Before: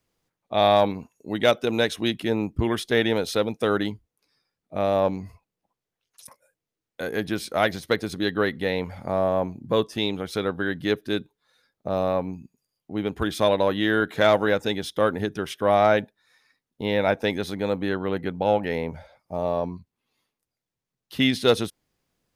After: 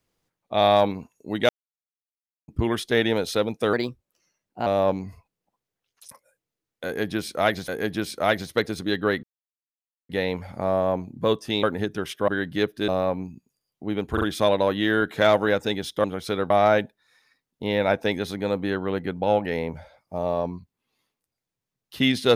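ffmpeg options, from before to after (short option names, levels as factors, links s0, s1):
-filter_complex "[0:a]asplit=14[s0][s1][s2][s3][s4][s5][s6][s7][s8][s9][s10][s11][s12][s13];[s0]atrim=end=1.49,asetpts=PTS-STARTPTS,afade=t=out:st=1.486:d=0.004:c=hsin[s14];[s1]atrim=start=1.49:end=2.48,asetpts=PTS-STARTPTS,volume=0[s15];[s2]atrim=start=2.48:end=3.734,asetpts=PTS-STARTPTS,afade=t=in:d=0.004:c=hsin[s16];[s3]atrim=start=3.73:end=4.83,asetpts=PTS-STARTPTS,asetrate=52038,aresample=44100,atrim=end_sample=41110,asetpts=PTS-STARTPTS[s17];[s4]atrim=start=4.826:end=7.852[s18];[s5]atrim=start=7.018:end=8.57,asetpts=PTS-STARTPTS,afade=t=out:st=1.548:d=0.004:c=hsin,apad=pad_dur=0.86[s19];[s6]atrim=start=8.57:end=10.112,asetpts=PTS-STARTPTS,afade=t=in:d=0.004:c=hsin[s20];[s7]atrim=start=15.038:end=15.692[s21];[s8]atrim=start=10.568:end=11.172[s22];[s9]atrim=start=11.958:end=13.252[s23];[s10]atrim=start=13.208:end=13.252[s24];[s11]atrim=start=13.208:end=15.042[s25];[s12]atrim=start=10.108:end=10.572[s26];[s13]atrim=start=15.688[s27];[s14][s15][s16]concat=n=3:v=0:a=1[s28];[s28][s17]acrossfade=d=0.004:c1=hsin:c2=hsin[s29];[s29][s18]acrossfade=d=0.004:c1=hsin:c2=hsin[s30];[s19][s20]concat=n=2:v=0:a=1[s31];[s30][s31]acrossfade=d=0.004:c1=hsin:c2=hsin[s32];[s32][s21]acrossfade=d=0.004:c1=hsin:c2=hsin[s33];[s33][s22]acrossfade=d=0.004:c1=hsin:c2=hsin[s34];[s34][s23]acrossfade=d=0.004:c1=hsin:c2=hsin[s35];[s35][s24]acrossfade=d=0.004:c1=hsin:c2=hsin[s36];[s36][s25]acrossfade=d=0.004:c1=hsin:c2=hsin[s37];[s37][s26]acrossfade=d=0.004:c1=hsin:c2=hsin[s38];[s38][s27]acrossfade=d=0.004:c1=hsin:c2=hsin"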